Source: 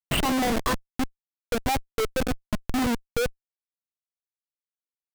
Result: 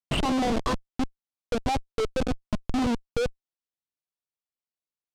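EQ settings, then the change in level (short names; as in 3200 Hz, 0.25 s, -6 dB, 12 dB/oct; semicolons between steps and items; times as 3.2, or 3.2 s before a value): air absorption 73 m; bell 1800 Hz -6 dB 0.9 oct; 0.0 dB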